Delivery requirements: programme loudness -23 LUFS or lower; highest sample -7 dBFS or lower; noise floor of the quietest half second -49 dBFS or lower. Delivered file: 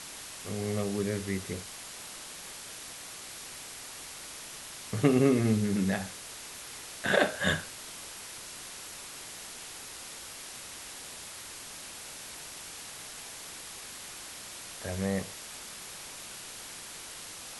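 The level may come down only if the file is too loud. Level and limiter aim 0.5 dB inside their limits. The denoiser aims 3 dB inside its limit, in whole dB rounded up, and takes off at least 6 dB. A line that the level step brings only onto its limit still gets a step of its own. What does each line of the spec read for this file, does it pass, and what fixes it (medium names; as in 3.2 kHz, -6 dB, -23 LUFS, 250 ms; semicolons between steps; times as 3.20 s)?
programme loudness -34.5 LUFS: pass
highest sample -9.5 dBFS: pass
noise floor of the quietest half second -44 dBFS: fail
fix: noise reduction 8 dB, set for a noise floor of -44 dBFS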